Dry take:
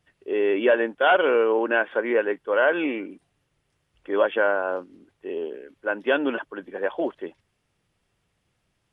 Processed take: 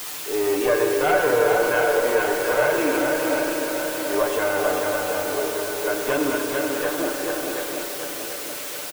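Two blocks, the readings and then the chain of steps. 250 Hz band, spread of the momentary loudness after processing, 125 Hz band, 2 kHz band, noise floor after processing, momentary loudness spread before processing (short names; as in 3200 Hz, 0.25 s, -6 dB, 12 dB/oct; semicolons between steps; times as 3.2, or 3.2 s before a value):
+2.5 dB, 9 LU, n/a, +1.5 dB, -32 dBFS, 14 LU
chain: one diode to ground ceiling -22.5 dBFS; high shelf 2800 Hz -10.5 dB; on a send: swung echo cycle 0.731 s, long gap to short 1.5:1, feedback 46%, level -5 dB; on the sum: requantised 6-bit, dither triangular; low shelf 180 Hz -10 dB; comb 6.7 ms; in parallel at +0.5 dB: limiter -16 dBFS, peak gain reduction 9.5 dB; on the sum: spring tank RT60 3.7 s, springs 32/50 ms, chirp 70 ms, DRR 2.5 dB; gain -4.5 dB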